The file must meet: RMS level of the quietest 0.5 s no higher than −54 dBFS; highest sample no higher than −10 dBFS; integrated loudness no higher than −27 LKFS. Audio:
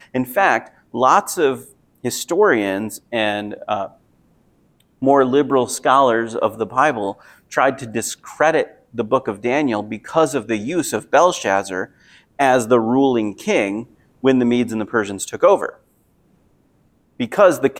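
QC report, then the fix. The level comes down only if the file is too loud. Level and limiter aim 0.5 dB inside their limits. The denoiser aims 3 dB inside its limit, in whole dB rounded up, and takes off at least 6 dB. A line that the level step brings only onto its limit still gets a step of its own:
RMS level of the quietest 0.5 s −59 dBFS: in spec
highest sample −1.5 dBFS: out of spec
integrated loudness −18.5 LKFS: out of spec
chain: level −9 dB

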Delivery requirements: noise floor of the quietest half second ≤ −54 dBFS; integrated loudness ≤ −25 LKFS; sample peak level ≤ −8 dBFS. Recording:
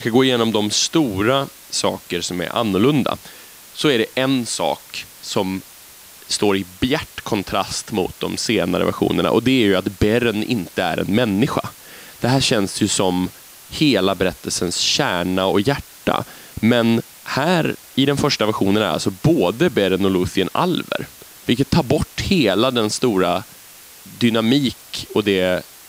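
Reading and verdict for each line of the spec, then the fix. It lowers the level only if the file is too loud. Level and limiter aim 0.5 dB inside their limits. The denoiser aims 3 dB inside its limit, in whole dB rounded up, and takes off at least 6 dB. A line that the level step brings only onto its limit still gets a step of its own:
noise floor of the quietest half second −43 dBFS: out of spec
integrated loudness −19.0 LKFS: out of spec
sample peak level −4.0 dBFS: out of spec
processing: broadband denoise 8 dB, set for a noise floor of −43 dBFS
level −6.5 dB

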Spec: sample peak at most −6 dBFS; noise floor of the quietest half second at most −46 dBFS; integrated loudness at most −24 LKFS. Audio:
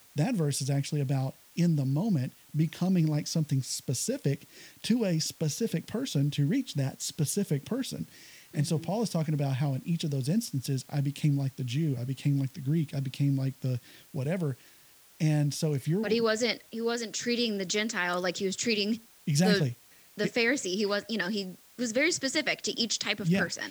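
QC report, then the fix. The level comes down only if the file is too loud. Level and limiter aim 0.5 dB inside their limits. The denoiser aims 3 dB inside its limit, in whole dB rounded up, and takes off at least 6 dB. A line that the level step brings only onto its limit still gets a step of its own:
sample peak −13.0 dBFS: in spec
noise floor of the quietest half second −57 dBFS: in spec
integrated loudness −29.5 LKFS: in spec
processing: no processing needed

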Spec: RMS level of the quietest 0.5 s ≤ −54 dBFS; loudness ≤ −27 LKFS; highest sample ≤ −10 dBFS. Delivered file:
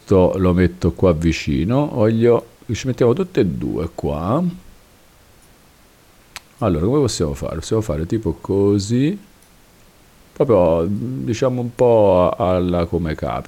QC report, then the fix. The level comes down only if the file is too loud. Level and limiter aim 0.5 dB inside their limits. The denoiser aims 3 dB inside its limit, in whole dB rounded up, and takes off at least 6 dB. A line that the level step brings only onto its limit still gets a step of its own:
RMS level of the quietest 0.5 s −50 dBFS: out of spec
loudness −18.0 LKFS: out of spec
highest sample −4.5 dBFS: out of spec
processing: level −9.5 dB

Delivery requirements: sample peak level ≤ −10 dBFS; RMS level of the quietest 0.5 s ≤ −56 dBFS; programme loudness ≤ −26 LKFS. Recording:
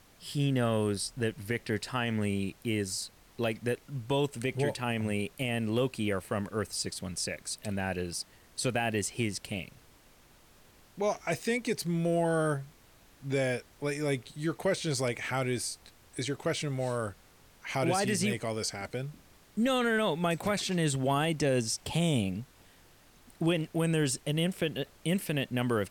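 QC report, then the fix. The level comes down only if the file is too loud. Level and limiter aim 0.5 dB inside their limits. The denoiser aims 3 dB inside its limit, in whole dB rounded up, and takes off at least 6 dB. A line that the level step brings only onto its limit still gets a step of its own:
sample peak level −18.0 dBFS: in spec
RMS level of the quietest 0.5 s −59 dBFS: in spec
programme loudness −31.5 LKFS: in spec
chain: no processing needed

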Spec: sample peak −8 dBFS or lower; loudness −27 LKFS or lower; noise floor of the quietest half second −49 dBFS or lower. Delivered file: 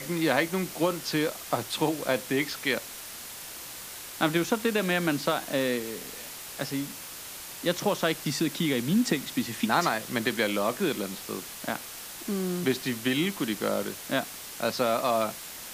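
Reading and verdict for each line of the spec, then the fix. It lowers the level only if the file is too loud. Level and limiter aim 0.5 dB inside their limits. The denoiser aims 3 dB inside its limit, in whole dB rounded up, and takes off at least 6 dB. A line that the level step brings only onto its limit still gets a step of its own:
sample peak −8.5 dBFS: in spec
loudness −29.0 LKFS: in spec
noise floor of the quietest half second −41 dBFS: out of spec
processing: broadband denoise 11 dB, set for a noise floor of −41 dBFS

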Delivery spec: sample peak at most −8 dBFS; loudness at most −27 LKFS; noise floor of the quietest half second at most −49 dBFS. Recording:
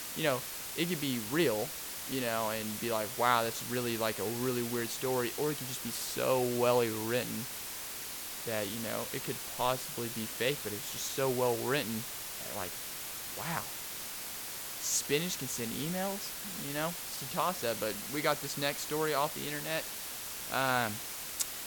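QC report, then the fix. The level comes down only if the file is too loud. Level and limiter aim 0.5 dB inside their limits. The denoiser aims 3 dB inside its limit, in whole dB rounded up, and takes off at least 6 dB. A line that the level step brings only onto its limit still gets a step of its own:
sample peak −11.0 dBFS: in spec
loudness −33.5 LKFS: in spec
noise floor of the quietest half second −42 dBFS: out of spec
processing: broadband denoise 10 dB, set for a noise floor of −42 dBFS

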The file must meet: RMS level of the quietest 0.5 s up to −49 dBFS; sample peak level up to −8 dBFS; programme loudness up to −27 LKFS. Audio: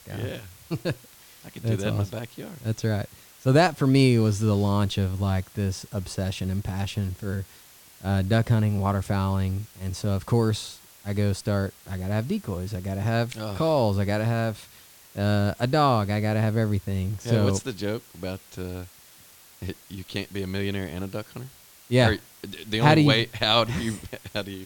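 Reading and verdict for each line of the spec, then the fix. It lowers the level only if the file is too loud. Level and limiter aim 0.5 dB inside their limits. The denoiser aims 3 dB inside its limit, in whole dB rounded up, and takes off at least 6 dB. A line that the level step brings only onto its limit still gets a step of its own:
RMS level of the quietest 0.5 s −52 dBFS: in spec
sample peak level −5.0 dBFS: out of spec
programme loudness −25.5 LKFS: out of spec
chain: level −2 dB
brickwall limiter −8.5 dBFS

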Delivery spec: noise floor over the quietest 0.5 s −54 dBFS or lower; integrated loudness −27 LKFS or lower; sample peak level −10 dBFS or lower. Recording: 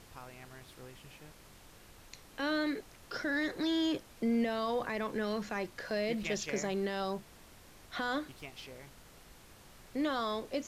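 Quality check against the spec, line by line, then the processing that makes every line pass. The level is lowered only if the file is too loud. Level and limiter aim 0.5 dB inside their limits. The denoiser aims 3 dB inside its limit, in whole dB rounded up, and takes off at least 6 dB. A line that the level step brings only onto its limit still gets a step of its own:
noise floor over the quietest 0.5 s −56 dBFS: in spec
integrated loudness −35.0 LKFS: in spec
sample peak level −22.5 dBFS: in spec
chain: no processing needed

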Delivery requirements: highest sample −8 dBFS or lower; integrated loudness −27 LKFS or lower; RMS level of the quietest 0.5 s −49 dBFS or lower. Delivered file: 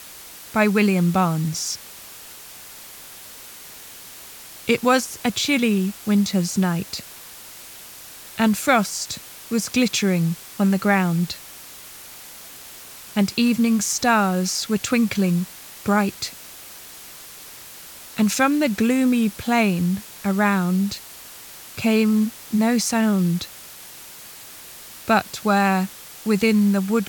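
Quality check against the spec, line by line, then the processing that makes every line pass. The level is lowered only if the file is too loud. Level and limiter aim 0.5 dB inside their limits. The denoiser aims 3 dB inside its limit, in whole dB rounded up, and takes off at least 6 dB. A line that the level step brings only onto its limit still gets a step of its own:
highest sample −4.0 dBFS: out of spec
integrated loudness −21.0 LKFS: out of spec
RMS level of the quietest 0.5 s −41 dBFS: out of spec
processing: broadband denoise 6 dB, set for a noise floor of −41 dBFS
level −6.5 dB

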